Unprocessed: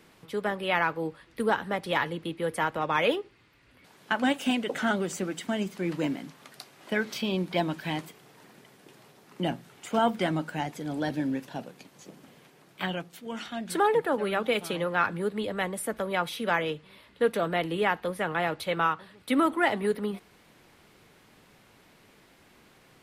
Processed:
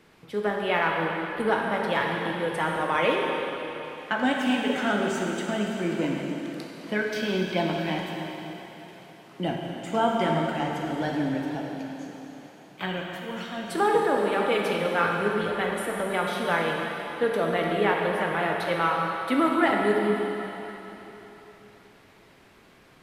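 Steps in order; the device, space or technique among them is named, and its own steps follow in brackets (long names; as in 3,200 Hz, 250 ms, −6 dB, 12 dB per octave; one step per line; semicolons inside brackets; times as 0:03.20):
swimming-pool hall (convolution reverb RT60 3.6 s, pre-delay 15 ms, DRR −1 dB; high-shelf EQ 5,800 Hz −7 dB)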